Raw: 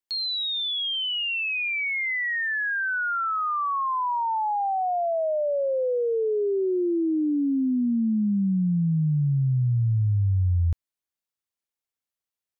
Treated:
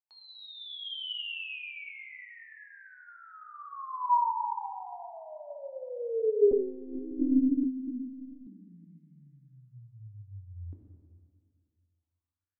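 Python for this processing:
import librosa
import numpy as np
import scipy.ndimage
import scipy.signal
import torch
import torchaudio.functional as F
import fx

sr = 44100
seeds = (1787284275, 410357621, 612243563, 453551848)

y = fx.wah_lfo(x, sr, hz=0.25, low_hz=270.0, high_hz=2100.0, q=5.2)
y = fx.rev_plate(y, sr, seeds[0], rt60_s=2.1, hf_ratio=0.65, predelay_ms=0, drr_db=0.0)
y = fx.lpc_monotone(y, sr, seeds[1], pitch_hz=260.0, order=8, at=(6.51, 8.47))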